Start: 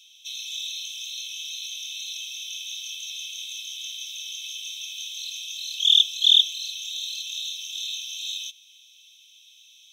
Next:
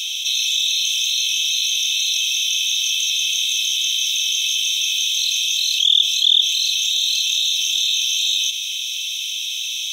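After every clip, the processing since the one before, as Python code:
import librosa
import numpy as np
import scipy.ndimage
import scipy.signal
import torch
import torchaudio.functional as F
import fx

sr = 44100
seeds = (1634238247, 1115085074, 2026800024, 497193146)

y = fx.env_flatten(x, sr, amount_pct=70)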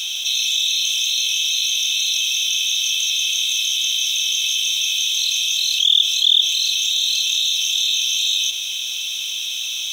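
y = fx.quant_dither(x, sr, seeds[0], bits=8, dither='triangular')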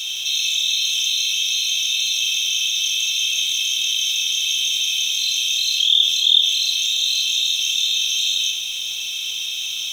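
y = fx.room_shoebox(x, sr, seeds[1], volume_m3=3800.0, walls='furnished', distance_m=4.4)
y = y * 10.0 ** (-4.0 / 20.0)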